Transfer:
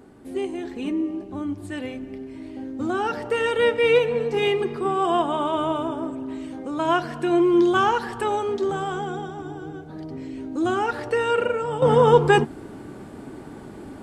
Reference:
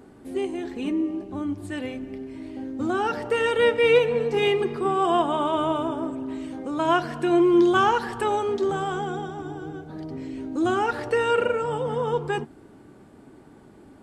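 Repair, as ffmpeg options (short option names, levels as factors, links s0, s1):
-af "asetnsamples=n=441:p=0,asendcmd='11.82 volume volume -10.5dB',volume=1"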